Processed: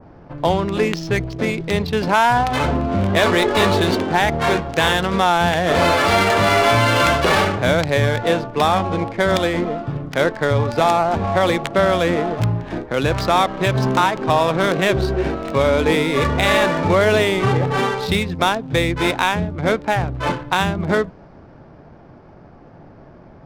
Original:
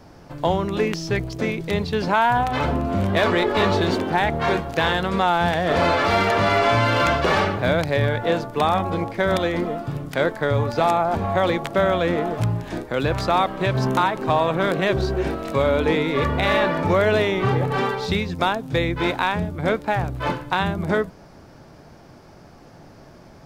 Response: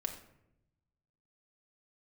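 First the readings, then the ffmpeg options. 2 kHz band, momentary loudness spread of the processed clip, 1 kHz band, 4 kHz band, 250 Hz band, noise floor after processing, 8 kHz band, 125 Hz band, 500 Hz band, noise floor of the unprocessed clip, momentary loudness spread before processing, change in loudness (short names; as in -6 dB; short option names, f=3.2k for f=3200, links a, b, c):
+4.0 dB, 6 LU, +3.0 dB, +5.5 dB, +3.0 dB, -44 dBFS, +9.5 dB, +3.0 dB, +3.0 dB, -46 dBFS, 6 LU, +3.5 dB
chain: -af "adynamicsmooth=sensitivity=5.5:basefreq=1.8k,adynamicequalizer=threshold=0.0282:dfrequency=2300:dqfactor=0.7:tfrequency=2300:tqfactor=0.7:attack=5:release=100:ratio=0.375:range=2:mode=boostabove:tftype=highshelf,volume=3dB"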